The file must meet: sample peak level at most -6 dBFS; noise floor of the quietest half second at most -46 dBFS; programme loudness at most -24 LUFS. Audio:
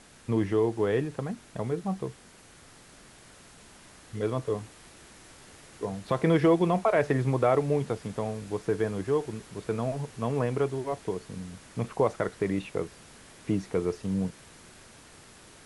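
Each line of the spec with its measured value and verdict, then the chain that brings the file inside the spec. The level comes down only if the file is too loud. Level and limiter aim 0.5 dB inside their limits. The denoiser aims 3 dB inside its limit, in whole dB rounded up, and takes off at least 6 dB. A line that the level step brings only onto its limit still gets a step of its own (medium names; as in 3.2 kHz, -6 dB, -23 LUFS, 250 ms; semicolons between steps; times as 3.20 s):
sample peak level -11.5 dBFS: pass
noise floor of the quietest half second -53 dBFS: pass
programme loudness -29.0 LUFS: pass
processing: none needed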